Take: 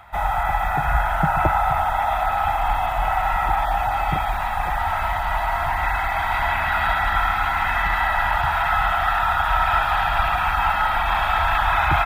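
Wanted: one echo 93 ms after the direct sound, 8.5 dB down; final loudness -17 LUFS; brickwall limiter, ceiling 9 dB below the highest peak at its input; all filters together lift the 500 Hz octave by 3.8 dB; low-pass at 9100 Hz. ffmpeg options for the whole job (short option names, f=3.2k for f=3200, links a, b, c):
-af "lowpass=9.1k,equalizer=f=500:t=o:g=6.5,alimiter=limit=-13dB:level=0:latency=1,aecho=1:1:93:0.376,volume=4.5dB"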